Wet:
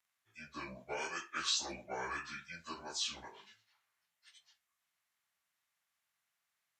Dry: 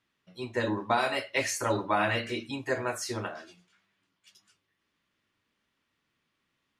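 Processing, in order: pitch shift by moving bins -8.5 st; pre-emphasis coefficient 0.97; gain +7 dB

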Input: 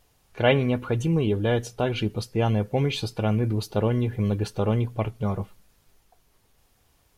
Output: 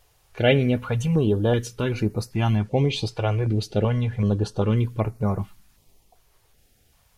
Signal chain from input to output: 2.56–4.77 LPF 8100 Hz 12 dB/oct; stepped notch 2.6 Hz 230–3200 Hz; gain +3 dB

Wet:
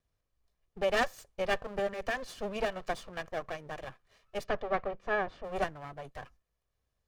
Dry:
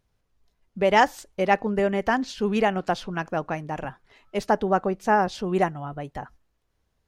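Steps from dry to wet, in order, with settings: minimum comb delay 1.7 ms; 4.43–5.43 LPF 3800 Hz -> 2100 Hz 12 dB/oct; gain -7.5 dB

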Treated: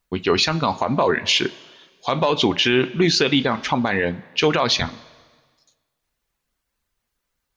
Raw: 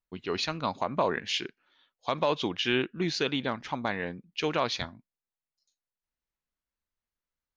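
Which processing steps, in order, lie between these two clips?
reverb removal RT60 0.5 s; two-slope reverb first 0.23 s, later 1.5 s, from -18 dB, DRR 11.5 dB; maximiser +22.5 dB; gain -7 dB

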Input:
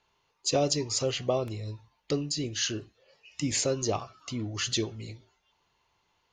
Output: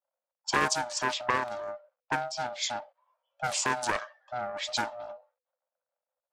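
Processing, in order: bit-crush 11-bit; frequency shift +490 Hz; low-pass opened by the level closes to 470 Hz, open at -23.5 dBFS; Doppler distortion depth 0.37 ms

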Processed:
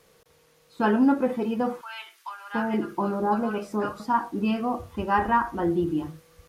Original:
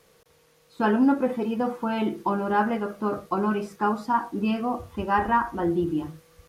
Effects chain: 1.81–4 bands offset in time highs, lows 0.72 s, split 1200 Hz

